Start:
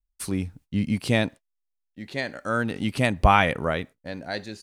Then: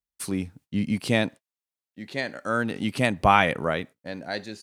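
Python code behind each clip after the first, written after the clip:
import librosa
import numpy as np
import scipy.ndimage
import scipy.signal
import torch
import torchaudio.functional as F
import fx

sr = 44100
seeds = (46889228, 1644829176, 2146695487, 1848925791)

y = scipy.signal.sosfilt(scipy.signal.butter(2, 120.0, 'highpass', fs=sr, output='sos'), x)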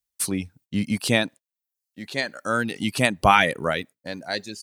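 y = fx.dereverb_blind(x, sr, rt60_s=0.6)
y = fx.high_shelf(y, sr, hz=3400.0, db=9.0)
y = F.gain(torch.from_numpy(y), 1.5).numpy()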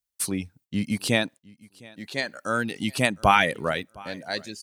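y = fx.echo_feedback(x, sr, ms=710, feedback_pct=19, wet_db=-24)
y = F.gain(torch.from_numpy(y), -2.0).numpy()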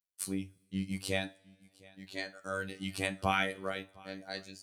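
y = fx.robotise(x, sr, hz=96.0)
y = fx.rev_double_slope(y, sr, seeds[0], early_s=0.25, late_s=1.9, knee_db=-27, drr_db=8.5)
y = F.gain(torch.from_numpy(y), -9.0).numpy()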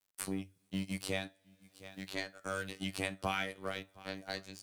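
y = fx.law_mismatch(x, sr, coded='A')
y = fx.band_squash(y, sr, depth_pct=70)
y = F.gain(torch.from_numpy(y), -1.0).numpy()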